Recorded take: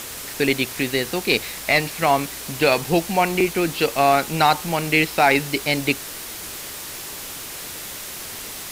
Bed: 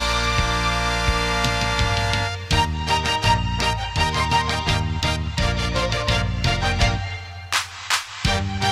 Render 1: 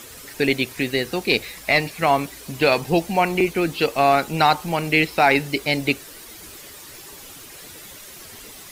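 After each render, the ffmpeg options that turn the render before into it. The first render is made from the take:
-af "afftdn=nr=10:nf=-34"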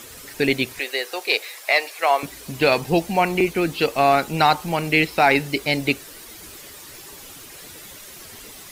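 -filter_complex "[0:a]asettb=1/sr,asplit=3[s0][s1][s2];[s0]atrim=end=0.794[s3];[s1]atrim=start=0.79:end=2.23,asetpts=PTS-STARTPTS,afade=t=in:d=0.004:c=qsin,afade=t=out:st=1.436:d=0.004:c=qsin,highpass=f=460:w=0.5412,highpass=f=460:w=1.3066[s4];[s2]atrim=start=2.226[s5];[s3][s4]acrossfade=d=0.004:c1=hsin:c2=qsin[s6];[s6][s5]acrossfade=d=0.004:c1=qsin:c2=hsin"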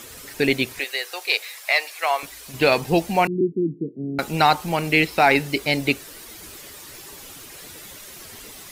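-filter_complex "[0:a]asettb=1/sr,asplit=3[s0][s1][s2];[s0]atrim=end=0.844[s3];[s1]atrim=start=0.84:end=2.54,asetpts=PTS-STARTPTS,afade=t=in:d=0.004:c=qsin,afade=t=out:st=1.696:d=0.004:c=qsin,equalizer=f=190:w=0.44:g=-13[s4];[s2]atrim=start=2.536[s5];[s3][s4]acrossfade=d=0.004:c1=hsin:c2=qsin[s6];[s6][s5]acrossfade=d=0.004:c1=qsin:c2=hsin,asettb=1/sr,asplit=3[s7][s8][s9];[s7]atrim=end=3.274[s10];[s8]atrim=start=3.27:end=4.19,asetpts=PTS-STARTPTS,afade=t=in:d=0.004:c=qsin,afade=t=out:st=0.916:d=0.004:c=qsin,asuperpass=centerf=220:order=12:qfactor=0.82[s11];[s9]atrim=start=4.186[s12];[s10][s11]acrossfade=d=0.004:c1=hsin:c2=qsin[s13];[s13][s12]acrossfade=d=0.004:c1=qsin:c2=hsin"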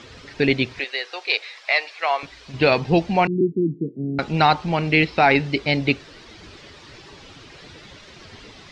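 -af "lowpass=f=4900:w=0.5412,lowpass=f=4900:w=1.3066,equalizer=f=100:t=o:w=2.2:g=5.5"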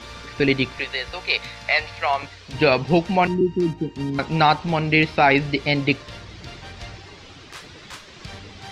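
-filter_complex "[1:a]volume=0.112[s0];[0:a][s0]amix=inputs=2:normalize=0"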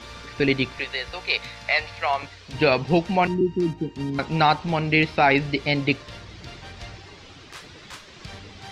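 -af "volume=0.794"

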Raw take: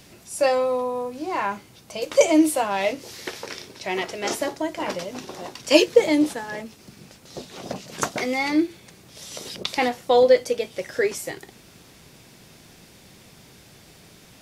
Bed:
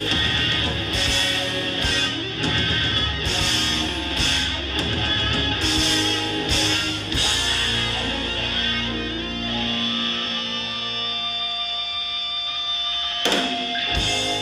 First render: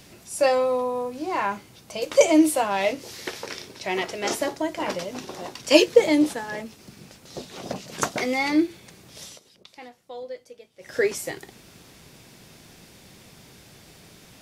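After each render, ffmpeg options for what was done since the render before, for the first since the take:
-filter_complex "[0:a]asplit=3[s0][s1][s2];[s0]atrim=end=9.4,asetpts=PTS-STARTPTS,afade=t=out:st=9.23:d=0.17:silence=0.0891251[s3];[s1]atrim=start=9.4:end=10.79,asetpts=PTS-STARTPTS,volume=0.0891[s4];[s2]atrim=start=10.79,asetpts=PTS-STARTPTS,afade=t=in:d=0.17:silence=0.0891251[s5];[s3][s4][s5]concat=n=3:v=0:a=1"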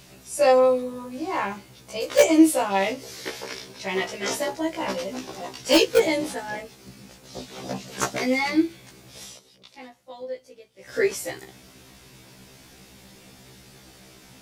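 -filter_complex "[0:a]asplit=2[s0][s1];[s1]aeval=exprs='(mod(2.24*val(0)+1,2)-1)/2.24':c=same,volume=0.355[s2];[s0][s2]amix=inputs=2:normalize=0,afftfilt=real='re*1.73*eq(mod(b,3),0)':imag='im*1.73*eq(mod(b,3),0)':win_size=2048:overlap=0.75"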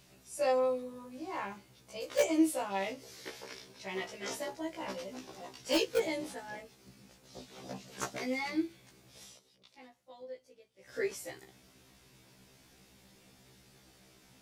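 -af "volume=0.251"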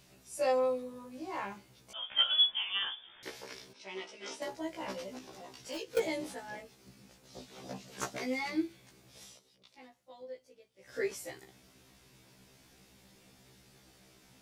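-filter_complex "[0:a]asettb=1/sr,asplit=3[s0][s1][s2];[s0]atrim=end=1.934[s3];[s1]atrim=start=1.93:end=3.23,asetpts=PTS-STARTPTS,afade=t=in:d=0.004:c=qsin,afade=t=out:st=1.296:d=0.004:c=qsin,lowpass=f=3100:t=q:w=0.5098,lowpass=f=3100:t=q:w=0.6013,lowpass=f=3100:t=q:w=0.9,lowpass=f=3100:t=q:w=2.563,afreqshift=-3700[s4];[s2]atrim=start=3.226[s5];[s3][s4]acrossfade=d=0.004:c1=hsin:c2=qsin[s6];[s6][s5]acrossfade=d=0.004:c1=qsin:c2=hsin,asettb=1/sr,asplit=3[s7][s8][s9];[s7]atrim=end=3.734[s10];[s8]atrim=start=3.73:end=4.42,asetpts=PTS-STARTPTS,afade=t=in:d=0.004:c=qsin,afade=t=out:st=0.686:d=0.004:c=qsin,highpass=330,equalizer=f=480:t=q:w=4:g=-6,equalizer=f=700:t=q:w=4:g=-9,equalizer=f=1100:t=q:w=4:g=-5,equalizer=f=1800:t=q:w=4:g=-9,equalizer=f=4300:t=q:w=4:g=-4,equalizer=f=7100:t=q:w=4:g=-8,lowpass=f=8000:w=0.5412,lowpass=f=8000:w=1.3066[s11];[s9]atrim=start=4.416[s12];[s10][s11]acrossfade=d=0.004:c1=hsin:c2=qsin[s13];[s13][s12]acrossfade=d=0.004:c1=qsin:c2=hsin,asettb=1/sr,asplit=3[s14][s15][s16];[s14]atrim=end=5.184[s17];[s15]atrim=start=5.18:end=5.97,asetpts=PTS-STARTPTS,afade=t=in:d=0.004:c=qsin,afade=t=out:st=0.786:d=0.004:c=qsin,acompressor=threshold=0.00501:ratio=2:attack=3.2:release=140:knee=1:detection=peak[s18];[s16]atrim=start=5.966[s19];[s17][s18]acrossfade=d=0.004:c1=hsin:c2=qsin[s20];[s20][s19]acrossfade=d=0.004:c1=qsin:c2=hsin"

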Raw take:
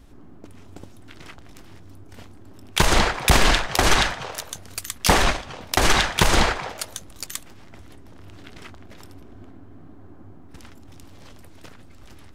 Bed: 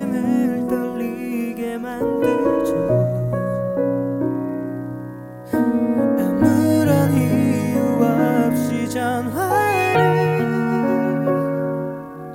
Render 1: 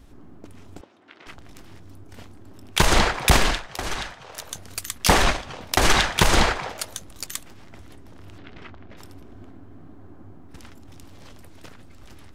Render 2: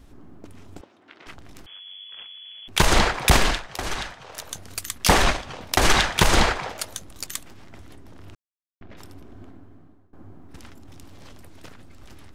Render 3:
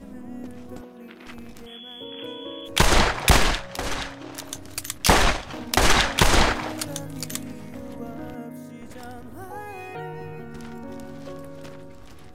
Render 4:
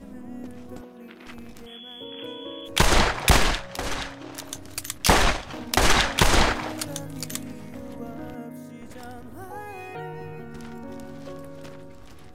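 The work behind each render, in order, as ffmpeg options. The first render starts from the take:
-filter_complex "[0:a]asettb=1/sr,asplit=3[s0][s1][s2];[s0]atrim=end=0.814[s3];[s1]atrim=start=0.81:end=1.27,asetpts=PTS-STARTPTS,afade=t=in:d=0.004:c=qsin,afade=t=out:st=0.456:d=0.004:c=qsin,highpass=410,lowpass=3100[s4];[s2]atrim=start=1.266[s5];[s3][s4]acrossfade=d=0.004:c1=hsin:c2=qsin[s6];[s6][s5]acrossfade=d=0.004:c1=qsin:c2=hsin,asettb=1/sr,asplit=3[s7][s8][s9];[s7]atrim=end=8.384[s10];[s8]atrim=start=8.38:end=8.97,asetpts=PTS-STARTPTS,afade=t=in:d=0.004:c=qsin,afade=t=out:st=0.586:d=0.004:c=qsin,lowpass=3200[s11];[s9]atrim=start=8.966[s12];[s10][s11]acrossfade=d=0.004:c1=hsin:c2=qsin[s13];[s13][s12]acrossfade=d=0.004:c1=qsin:c2=hsin,asplit=3[s14][s15][s16];[s14]atrim=end=3.61,asetpts=PTS-STARTPTS,afade=t=out:st=3.32:d=0.29:silence=0.266073[s17];[s15]atrim=start=3.61:end=4.25,asetpts=PTS-STARTPTS,volume=0.266[s18];[s16]atrim=start=4.25,asetpts=PTS-STARTPTS,afade=t=in:d=0.29:silence=0.266073[s19];[s17][s18][s19]concat=n=3:v=0:a=1"
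-filter_complex "[0:a]asettb=1/sr,asplit=3[s0][s1][s2];[s0]atrim=end=1.664[s3];[s1]atrim=start=1.66:end=2.68,asetpts=PTS-STARTPTS,afade=t=in:d=0.004:c=qsin,afade=t=out:st=1.016:d=0.004:c=qsin,lowpass=f=2900:t=q:w=0.5098,lowpass=f=2900:t=q:w=0.6013,lowpass=f=2900:t=q:w=0.9,lowpass=f=2900:t=q:w=2.563,afreqshift=-3400[s4];[s2]atrim=start=2.676[s5];[s3][s4]acrossfade=d=0.004:c1=hsin:c2=qsin[s6];[s6][s5]acrossfade=d=0.004:c1=qsin:c2=hsin,asplit=4[s7][s8][s9][s10];[s7]atrim=end=8.35,asetpts=PTS-STARTPTS,afade=t=out:st=8.346:d=0.004:c=hsin[s11];[s8]atrim=start=8.35:end=8.81,asetpts=PTS-STARTPTS,volume=0[s12];[s9]atrim=start=8.81:end=10.13,asetpts=PTS-STARTPTS,afade=t=in:d=0.004:c=hsin,afade=t=out:st=0.67:d=0.65:silence=0.0707946[s13];[s10]atrim=start=10.13,asetpts=PTS-STARTPTS,afade=t=in:d=0.004:c=hsin:silence=0.0707946[s14];[s11][s12][s13][s14]concat=n=4:v=0:a=1"
-filter_complex "[1:a]volume=0.106[s0];[0:a][s0]amix=inputs=2:normalize=0"
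-af "volume=0.891"

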